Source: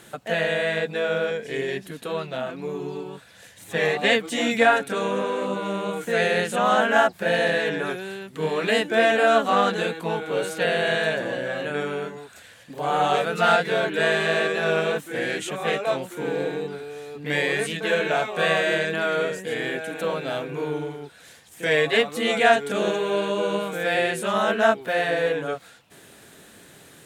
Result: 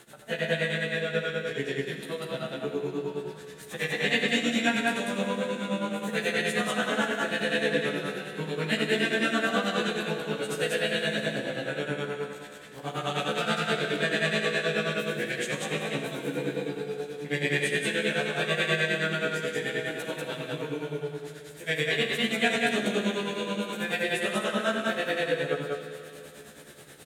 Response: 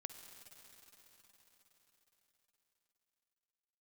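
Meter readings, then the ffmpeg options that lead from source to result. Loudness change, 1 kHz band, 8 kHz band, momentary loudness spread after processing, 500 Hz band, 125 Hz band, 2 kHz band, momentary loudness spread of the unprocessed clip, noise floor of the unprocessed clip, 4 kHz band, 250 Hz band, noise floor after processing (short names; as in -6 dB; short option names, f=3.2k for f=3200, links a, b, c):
-5.0 dB, -10.0 dB, -1.0 dB, 10 LU, -7.0 dB, -0.5 dB, -4.0 dB, 12 LU, -50 dBFS, -1.5 dB, -1.0 dB, -46 dBFS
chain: -filter_complex "[0:a]acrossover=split=440|1500[a][b][c];[b]acompressor=threshold=-38dB:ratio=6[d];[a][d][c]amix=inputs=3:normalize=0,tremolo=f=9.4:d=0.99,asplit=2[e][f];[f]adelay=14,volume=-2dB[g];[e][g]amix=inputs=2:normalize=0,aecho=1:1:90.38|192.4:0.355|0.891[h];[1:a]atrim=start_sample=2205,asetrate=79380,aresample=44100[i];[h][i]afir=irnorm=-1:irlink=0,volume=7.5dB"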